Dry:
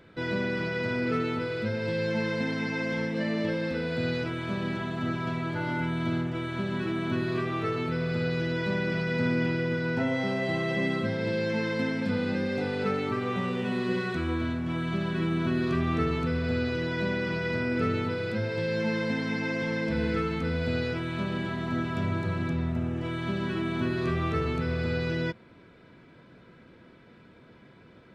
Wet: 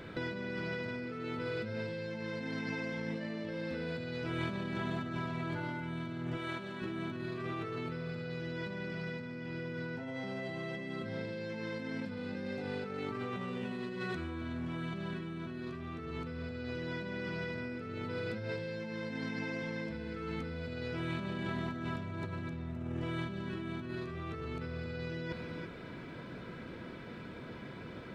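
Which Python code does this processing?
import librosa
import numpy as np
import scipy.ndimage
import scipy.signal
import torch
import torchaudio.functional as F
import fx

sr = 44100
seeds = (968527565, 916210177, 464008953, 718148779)

p1 = fx.low_shelf(x, sr, hz=99.0, db=6.5, at=(23.24, 23.89))
p2 = p1 + fx.echo_single(p1, sr, ms=343, db=-23.0, dry=0)
p3 = fx.over_compress(p2, sr, threshold_db=-38.0, ratio=-1.0)
p4 = fx.low_shelf(p3, sr, hz=230.0, db=-12.0, at=(6.37, 6.82))
y = F.gain(torch.from_numpy(p4), -1.0).numpy()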